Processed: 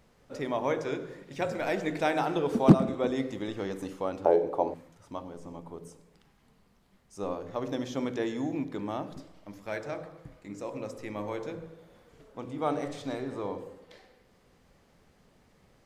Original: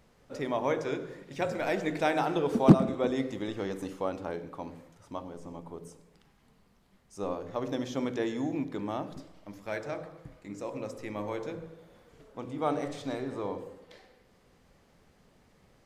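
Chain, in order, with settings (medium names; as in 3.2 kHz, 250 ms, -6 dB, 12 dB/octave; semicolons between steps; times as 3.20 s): 4.25–4.74 s: high-order bell 550 Hz +15 dB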